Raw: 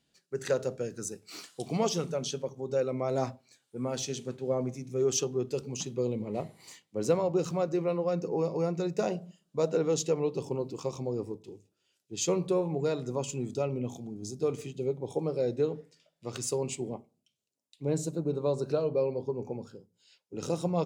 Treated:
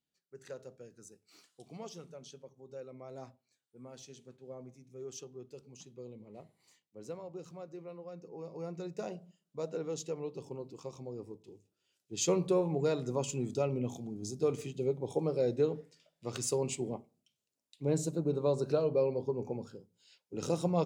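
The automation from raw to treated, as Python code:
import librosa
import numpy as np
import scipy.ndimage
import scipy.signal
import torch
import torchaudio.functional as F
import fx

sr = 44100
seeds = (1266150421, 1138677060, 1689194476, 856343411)

y = fx.gain(x, sr, db=fx.line((8.32, -17.0), (8.73, -10.0), (11.17, -10.0), (12.26, -1.0)))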